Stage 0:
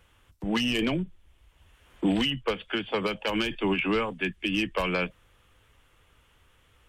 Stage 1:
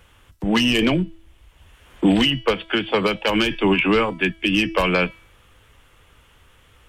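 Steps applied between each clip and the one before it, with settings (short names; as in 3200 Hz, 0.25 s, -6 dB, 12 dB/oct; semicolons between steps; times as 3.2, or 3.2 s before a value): de-hum 327.8 Hz, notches 18; gain +8.5 dB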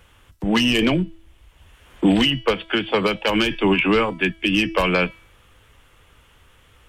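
nothing audible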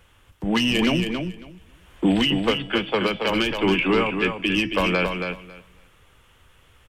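feedback echo 0.275 s, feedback 16%, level -6 dB; on a send at -21.5 dB: reverb RT60 0.80 s, pre-delay 5 ms; on the sum: gain -3 dB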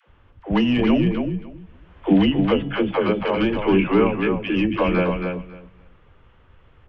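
tape spacing loss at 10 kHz 42 dB; dispersion lows, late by 83 ms, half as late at 450 Hz; gain +5 dB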